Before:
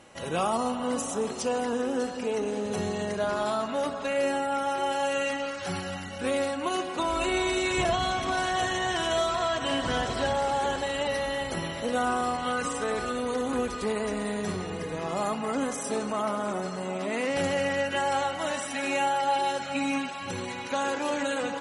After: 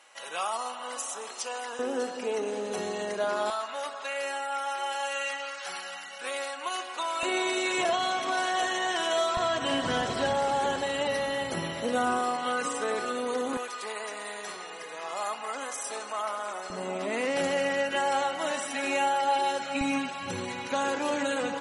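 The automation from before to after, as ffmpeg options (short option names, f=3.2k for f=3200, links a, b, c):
-af "asetnsamples=n=441:p=0,asendcmd='1.79 highpass f 320;3.5 highpass f 860;7.23 highpass f 360;9.37 highpass f 110;12.19 highpass f 270;13.57 highpass f 790;16.7 highpass f 230;19.81 highpass f 82',highpass=930"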